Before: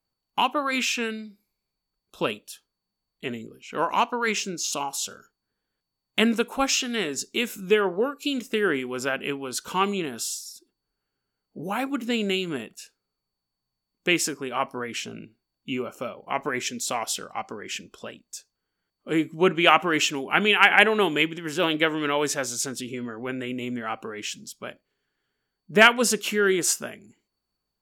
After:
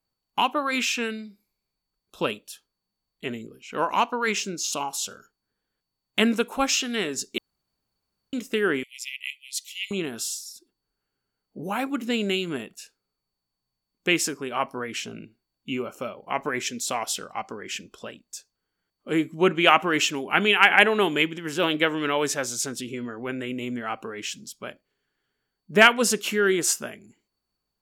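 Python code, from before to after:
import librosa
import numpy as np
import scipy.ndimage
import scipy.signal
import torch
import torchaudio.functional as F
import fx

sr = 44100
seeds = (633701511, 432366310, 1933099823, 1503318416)

y = fx.brickwall_highpass(x, sr, low_hz=1900.0, at=(8.83, 9.91))
y = fx.edit(y, sr, fx.room_tone_fill(start_s=7.38, length_s=0.95), tone=tone)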